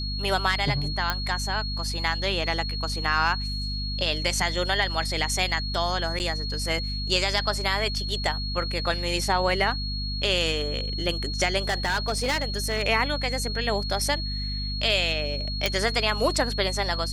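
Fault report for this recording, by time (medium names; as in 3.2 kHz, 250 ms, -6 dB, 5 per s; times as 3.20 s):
hum 50 Hz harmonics 5 -31 dBFS
whine 4.3 kHz -32 dBFS
1.10 s: pop -9 dBFS
6.19–6.20 s: dropout 9.4 ms
11.69–12.83 s: clipped -20.5 dBFS
15.66 s: pop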